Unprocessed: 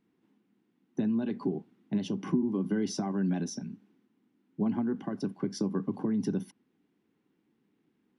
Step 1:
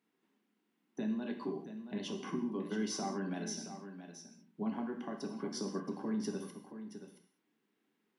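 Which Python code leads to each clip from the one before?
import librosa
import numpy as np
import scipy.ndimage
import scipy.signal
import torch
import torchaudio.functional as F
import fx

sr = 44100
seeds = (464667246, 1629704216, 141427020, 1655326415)

y = fx.highpass(x, sr, hz=710.0, slope=6)
y = y + 10.0 ** (-10.5 / 20.0) * np.pad(y, (int(674 * sr / 1000.0), 0))[:len(y)]
y = fx.rev_gated(y, sr, seeds[0], gate_ms=230, shape='falling', drr_db=3.0)
y = F.gain(torch.from_numpy(y), -1.5).numpy()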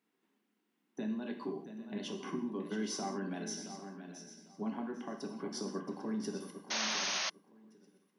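y = fx.low_shelf(x, sr, hz=110.0, db=-7.5)
y = fx.echo_feedback(y, sr, ms=798, feedback_pct=21, wet_db=-14)
y = fx.spec_paint(y, sr, seeds[1], shape='noise', start_s=6.7, length_s=0.6, low_hz=510.0, high_hz=6600.0, level_db=-35.0)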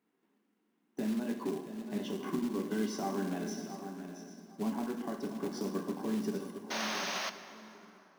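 y = fx.high_shelf(x, sr, hz=2400.0, db=-10.5)
y = fx.quant_float(y, sr, bits=2)
y = fx.rev_plate(y, sr, seeds[2], rt60_s=3.6, hf_ratio=0.6, predelay_ms=0, drr_db=10.5)
y = F.gain(torch.from_numpy(y), 4.0).numpy()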